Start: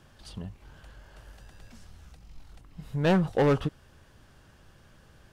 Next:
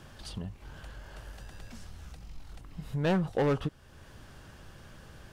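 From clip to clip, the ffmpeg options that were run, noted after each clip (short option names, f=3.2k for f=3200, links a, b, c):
-af "acompressor=threshold=-50dB:ratio=1.5,volume=6dB"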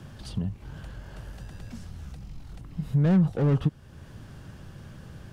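-filter_complex "[0:a]equalizer=f=140:t=o:w=2.4:g=10.5,acrossover=split=240[a][b];[b]asoftclip=type=tanh:threshold=-26.5dB[c];[a][c]amix=inputs=2:normalize=0"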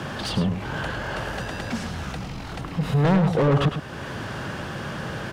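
-filter_complex "[0:a]asplit=2[a][b];[b]highpass=f=720:p=1,volume=30dB,asoftclip=type=tanh:threshold=-12.5dB[c];[a][c]amix=inputs=2:normalize=0,lowpass=f=2.2k:p=1,volume=-6dB,asplit=2[d][e];[e]adelay=105,volume=-8dB,highshelf=f=4k:g=-2.36[f];[d][f]amix=inputs=2:normalize=0"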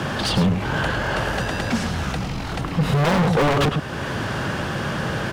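-af "aeval=exprs='0.106*(abs(mod(val(0)/0.106+3,4)-2)-1)':c=same,volume=6.5dB"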